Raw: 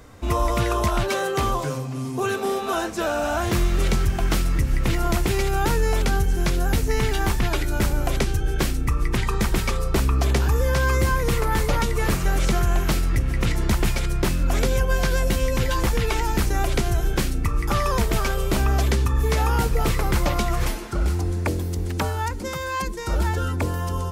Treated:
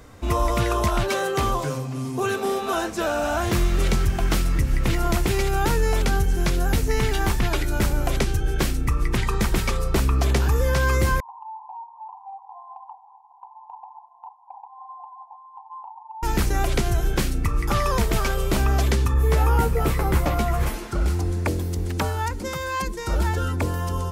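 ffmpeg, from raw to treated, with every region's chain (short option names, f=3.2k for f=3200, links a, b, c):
-filter_complex "[0:a]asettb=1/sr,asplit=3[a][b][c];[a]atrim=end=11.204[d];[b]atrim=start=11.2:end=16.23,asetpts=PTS-STARTPTS,afade=t=in:d=0.004:c=qsin,afade=t=out:st=5.026:d=0.004:c=qsin,asuperpass=centerf=880:order=12:qfactor=3.1,acompressor=threshold=-34dB:ratio=6:attack=3.2:release=140:knee=1:detection=peak[e];[c]atrim=start=16.226[f];[d][e]acrossfade=d=0.004:c1=hsin:c2=qsin[g];[g][f]acrossfade=d=0.004:c1=qsin:c2=hsin,asettb=1/sr,asplit=3[h][i][j];[h]atrim=end=19.144[k];[i]atrim=start=19.14:end=20.74,asetpts=PTS-STARTPTS,afade=t=in:d=0.004:c=qsin,afade=t=out:st=1.596:d=0.004:c=qsin,equalizer=f=4.8k:t=o:w=2:g=-7.5,asplit=2[l][m];[m]adelay=13,volume=-5dB[n];[l][n]amix=inputs=2:normalize=0,atrim=end_sample=70560[o];[j]atrim=start=20.736[p];[k][o]acrossfade=d=0.004:c1=hsin:c2=qsin[q];[q][p]acrossfade=d=0.004:c1=qsin:c2=hsin"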